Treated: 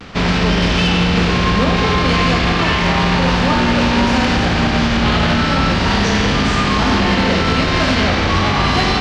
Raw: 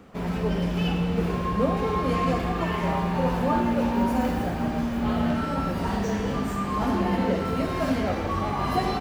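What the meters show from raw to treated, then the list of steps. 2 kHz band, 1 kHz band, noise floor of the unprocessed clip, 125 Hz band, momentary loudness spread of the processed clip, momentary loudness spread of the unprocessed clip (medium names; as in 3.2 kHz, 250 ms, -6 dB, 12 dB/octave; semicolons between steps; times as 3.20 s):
+18.0 dB, +10.0 dB, -29 dBFS, +11.5 dB, 1 LU, 3 LU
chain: spectral contrast reduction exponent 0.65; low-pass 5.1 kHz 24 dB/octave; peaking EQ 560 Hz -7 dB 2.6 oct; vibrato 0.34 Hz 23 cents; saturation -19.5 dBFS, distortion -21 dB; flange 0.29 Hz, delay 6.7 ms, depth 4.2 ms, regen -88%; loudness maximiser +29 dB; trim -6 dB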